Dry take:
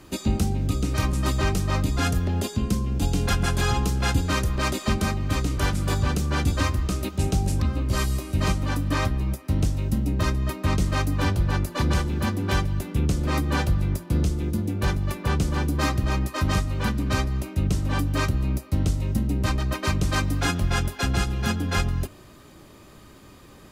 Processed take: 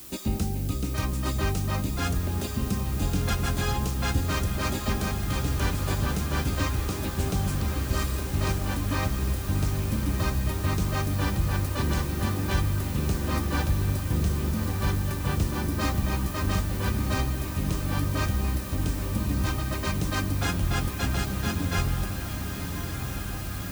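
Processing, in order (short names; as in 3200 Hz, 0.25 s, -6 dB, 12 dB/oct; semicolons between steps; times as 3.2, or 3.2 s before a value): added noise blue -40 dBFS; on a send: diffused feedback echo 1.252 s, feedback 78%, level -8 dB; on the sum: gain -4.5 dB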